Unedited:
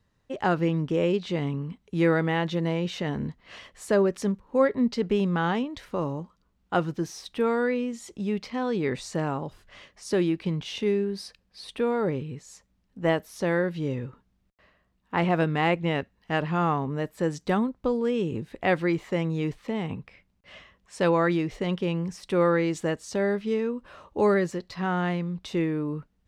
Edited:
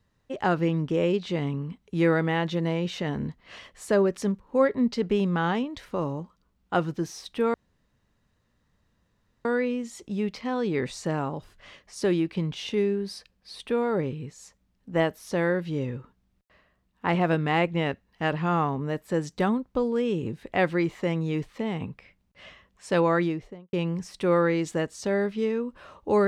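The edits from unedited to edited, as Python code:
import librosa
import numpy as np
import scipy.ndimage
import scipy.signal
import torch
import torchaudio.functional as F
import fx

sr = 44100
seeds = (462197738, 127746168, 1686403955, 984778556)

y = fx.studio_fade_out(x, sr, start_s=21.23, length_s=0.59)
y = fx.edit(y, sr, fx.insert_room_tone(at_s=7.54, length_s=1.91), tone=tone)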